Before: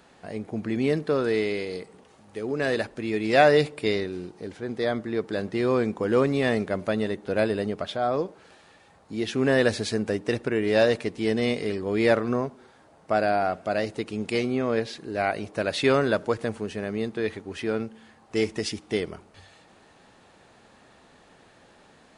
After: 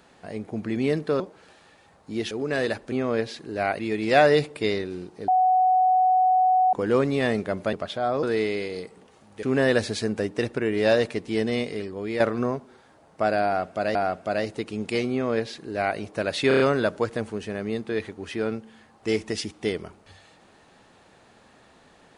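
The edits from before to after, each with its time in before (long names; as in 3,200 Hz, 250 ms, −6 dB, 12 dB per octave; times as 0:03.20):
0:01.20–0:02.40: swap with 0:08.22–0:09.33
0:04.50–0:05.95: beep over 743 Hz −16 dBFS
0:06.95–0:07.72: remove
0:11.26–0:12.10: fade out, to −8 dB
0:13.35–0:13.85: repeat, 2 plays
0:14.51–0:15.38: duplicate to 0:03.01
0:15.88: stutter 0.03 s, 5 plays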